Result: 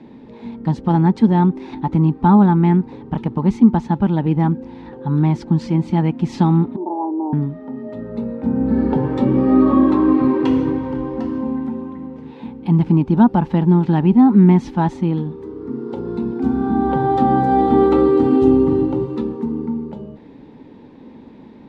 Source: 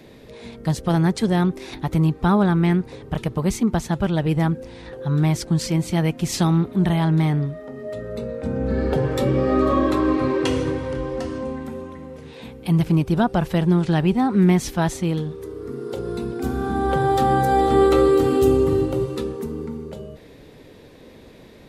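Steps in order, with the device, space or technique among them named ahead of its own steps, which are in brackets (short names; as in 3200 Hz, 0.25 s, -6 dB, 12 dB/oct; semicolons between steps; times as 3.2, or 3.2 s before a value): 6.76–7.33 elliptic band-pass 310–940 Hz, stop band 40 dB; inside a cardboard box (LPF 3700 Hz 12 dB/oct; small resonant body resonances 240/870 Hz, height 16 dB, ringing for 25 ms); gain -5.5 dB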